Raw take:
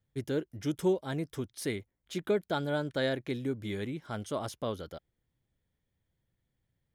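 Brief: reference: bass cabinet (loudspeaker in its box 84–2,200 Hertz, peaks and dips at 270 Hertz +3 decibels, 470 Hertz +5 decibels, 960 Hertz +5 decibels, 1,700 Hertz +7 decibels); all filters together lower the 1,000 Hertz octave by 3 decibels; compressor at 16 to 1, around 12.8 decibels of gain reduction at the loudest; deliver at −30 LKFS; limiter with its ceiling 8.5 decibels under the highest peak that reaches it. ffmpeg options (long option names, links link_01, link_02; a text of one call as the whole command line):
ffmpeg -i in.wav -af "equalizer=frequency=1000:width_type=o:gain=-8,acompressor=threshold=-37dB:ratio=16,alimiter=level_in=13dB:limit=-24dB:level=0:latency=1,volume=-13dB,highpass=frequency=84:width=0.5412,highpass=frequency=84:width=1.3066,equalizer=frequency=270:width_type=q:width=4:gain=3,equalizer=frequency=470:width_type=q:width=4:gain=5,equalizer=frequency=960:width_type=q:width=4:gain=5,equalizer=frequency=1700:width_type=q:width=4:gain=7,lowpass=frequency=2200:width=0.5412,lowpass=frequency=2200:width=1.3066,volume=15.5dB" out.wav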